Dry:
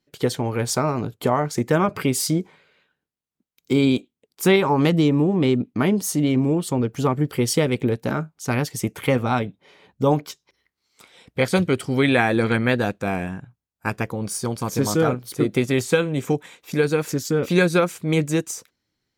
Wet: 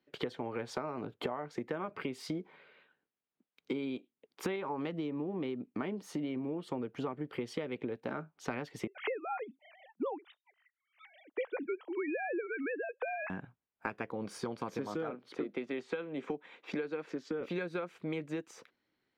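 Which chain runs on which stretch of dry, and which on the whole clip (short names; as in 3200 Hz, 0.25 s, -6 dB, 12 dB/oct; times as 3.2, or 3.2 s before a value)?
8.87–13.3 sine-wave speech + tremolo triangle 1.2 Hz, depth 40%
15.1–17.41 HPF 170 Hz 24 dB/oct + air absorption 54 m
whole clip: three-band isolator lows -14 dB, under 210 Hz, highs -24 dB, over 3600 Hz; compressor 10:1, threshold -34 dBFS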